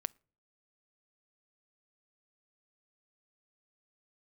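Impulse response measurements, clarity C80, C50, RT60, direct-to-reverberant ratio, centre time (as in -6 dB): 33.5 dB, 28.5 dB, 0.45 s, 19.0 dB, 1 ms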